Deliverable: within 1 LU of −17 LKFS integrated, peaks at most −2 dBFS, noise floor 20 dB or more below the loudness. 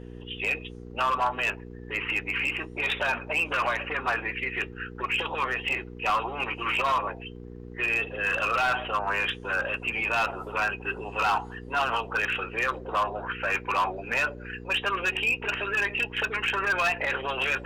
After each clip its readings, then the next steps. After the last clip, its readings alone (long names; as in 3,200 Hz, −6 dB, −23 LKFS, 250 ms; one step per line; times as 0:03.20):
share of clipped samples 1.4%; peaks flattened at −19.5 dBFS; mains hum 60 Hz; hum harmonics up to 480 Hz; level of the hum −40 dBFS; integrated loudness −27.0 LKFS; sample peak −19.5 dBFS; target loudness −17.0 LKFS
→ clipped peaks rebuilt −19.5 dBFS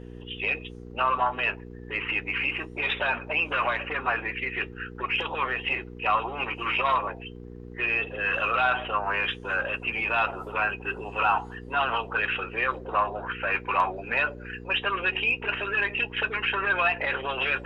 share of clipped samples 0.0%; mains hum 60 Hz; hum harmonics up to 480 Hz; level of the hum −39 dBFS
→ hum removal 60 Hz, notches 8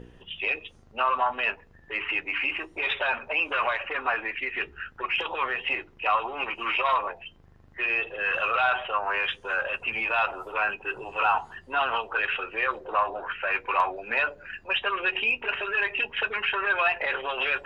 mains hum none found; integrated loudness −26.5 LKFS; sample peak −10.0 dBFS; target loudness −17.0 LKFS
→ level +9.5 dB
brickwall limiter −2 dBFS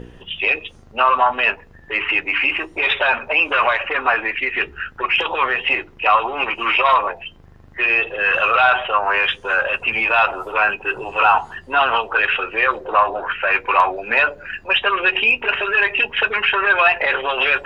integrated loudness −17.0 LKFS; sample peak −2.0 dBFS; background noise floor −45 dBFS